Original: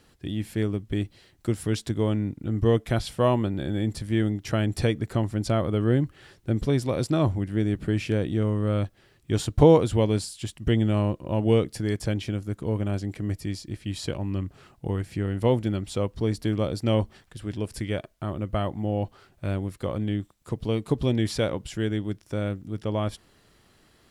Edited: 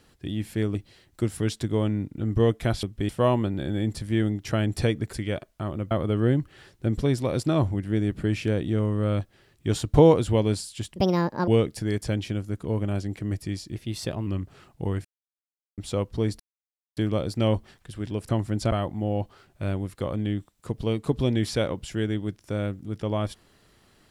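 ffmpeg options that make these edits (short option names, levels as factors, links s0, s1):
-filter_complex "[0:a]asplit=15[s0][s1][s2][s3][s4][s5][s6][s7][s8][s9][s10][s11][s12][s13][s14];[s0]atrim=end=0.752[s15];[s1]atrim=start=1.008:end=3.092[s16];[s2]atrim=start=0.748:end=1.012[s17];[s3]atrim=start=3.088:end=5.132[s18];[s4]atrim=start=17.748:end=18.532[s19];[s5]atrim=start=5.548:end=10.604[s20];[s6]atrim=start=10.6:end=11.46,asetpts=PTS-STARTPTS,asetrate=73206,aresample=44100[s21];[s7]atrim=start=11.456:end=13.744[s22];[s8]atrim=start=13.74:end=14.3,asetpts=PTS-STARTPTS,asetrate=48510,aresample=44100[s23];[s9]atrim=start=14.296:end=15.08,asetpts=PTS-STARTPTS,afade=t=out:st=0.78:d=0.004:c=hsin[s24];[s10]atrim=start=15.08:end=15.81,asetpts=PTS-STARTPTS,volume=0[s25];[s11]atrim=start=15.81:end=16.43,asetpts=PTS-STARTPTS,afade=t=in:d=0.004:c=hsin,afade=t=out:st=0.616:d=0.004:c=hsin,apad=pad_dur=0.57[s26];[s12]atrim=start=16.43:end=17.752,asetpts=PTS-STARTPTS,afade=t=in:d=0.004:c=hsin[s27];[s13]atrim=start=5.128:end=5.552[s28];[s14]atrim=start=18.528[s29];[s15][s16]acrossfade=d=0.004:c1=hsin:c2=hsin[s30];[s30][s17]acrossfade=d=0.004:c1=hsin:c2=hsin[s31];[s31][s18]acrossfade=d=0.004:c1=hsin:c2=hsin[s32];[s32][s19]acrossfade=d=0.004:c1=hsin:c2=hsin[s33];[s33][s20]acrossfade=d=0.004:c1=hsin:c2=hsin[s34];[s34][s21]acrossfade=d=0.004:c1=hsin:c2=hsin[s35];[s35][s22]acrossfade=d=0.004:c1=hsin:c2=hsin[s36];[s36][s23]acrossfade=d=0.004:c1=hsin:c2=hsin[s37];[s24][s25][s26][s27]concat=n=4:v=0:a=1[s38];[s37][s38]acrossfade=d=0.004:c1=hsin:c2=hsin[s39];[s39][s28]acrossfade=d=0.004:c1=hsin:c2=hsin[s40];[s40][s29]acrossfade=d=0.004:c1=hsin:c2=hsin"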